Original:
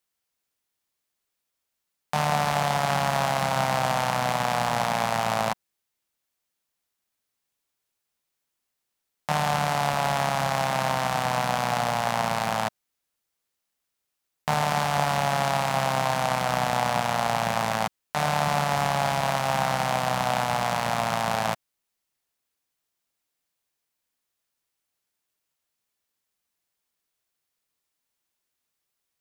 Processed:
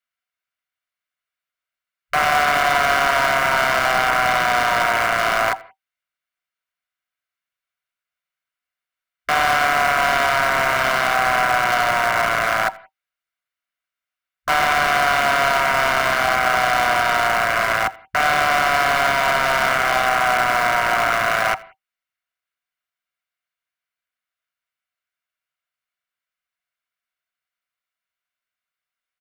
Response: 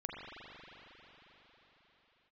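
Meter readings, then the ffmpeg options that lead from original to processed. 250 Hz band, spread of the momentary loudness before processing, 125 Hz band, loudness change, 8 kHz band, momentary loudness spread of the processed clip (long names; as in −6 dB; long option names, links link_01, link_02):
−1.0 dB, 3 LU, −6.0 dB, +7.5 dB, +4.0 dB, 4 LU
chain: -filter_complex "[0:a]afwtdn=0.0158,equalizer=frequency=1900:width_type=o:width=2.1:gain=7.5,aecho=1:1:1.4:0.35,acrossover=split=740|6800[link_01][link_02][link_03];[link_01]aeval=exprs='(mod(29.9*val(0)+1,2)-1)/29.9':channel_layout=same[link_04];[link_02]asplit=2[link_05][link_06];[link_06]highpass=frequency=720:poles=1,volume=17dB,asoftclip=type=tanh:threshold=-7.5dB[link_07];[link_05][link_07]amix=inputs=2:normalize=0,lowpass=frequency=1400:poles=1,volume=-6dB[link_08];[link_04][link_08][link_03]amix=inputs=3:normalize=0,asuperstop=centerf=850:order=20:qfactor=5.4,asplit=2[link_09][link_10];[1:a]atrim=start_sample=2205,afade=type=out:start_time=0.16:duration=0.01,atrim=end_sample=7497,adelay=82[link_11];[link_10][link_11]afir=irnorm=-1:irlink=0,volume=-18.5dB[link_12];[link_09][link_12]amix=inputs=2:normalize=0,volume=3.5dB"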